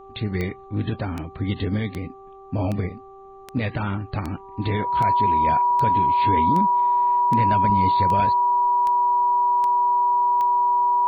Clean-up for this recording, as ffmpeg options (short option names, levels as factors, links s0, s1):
-af "adeclick=t=4,bandreject=f=389.4:t=h:w=4,bandreject=f=778.8:t=h:w=4,bandreject=f=1168.2:t=h:w=4,bandreject=f=970:w=30,agate=range=0.0891:threshold=0.0158"